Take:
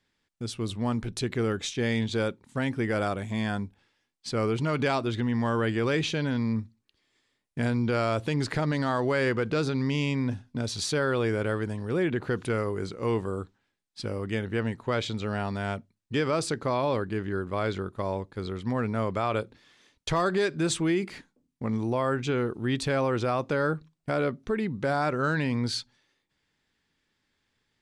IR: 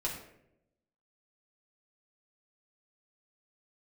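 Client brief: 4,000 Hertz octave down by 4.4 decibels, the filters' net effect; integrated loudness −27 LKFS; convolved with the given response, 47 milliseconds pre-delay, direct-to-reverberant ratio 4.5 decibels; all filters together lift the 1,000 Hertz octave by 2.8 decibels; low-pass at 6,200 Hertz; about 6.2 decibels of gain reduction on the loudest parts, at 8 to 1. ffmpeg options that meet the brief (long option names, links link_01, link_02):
-filter_complex "[0:a]lowpass=6200,equalizer=frequency=1000:width_type=o:gain=4,equalizer=frequency=4000:width_type=o:gain=-5,acompressor=threshold=-27dB:ratio=8,asplit=2[link_01][link_02];[1:a]atrim=start_sample=2205,adelay=47[link_03];[link_02][link_03]afir=irnorm=-1:irlink=0,volume=-8dB[link_04];[link_01][link_04]amix=inputs=2:normalize=0,volume=4.5dB"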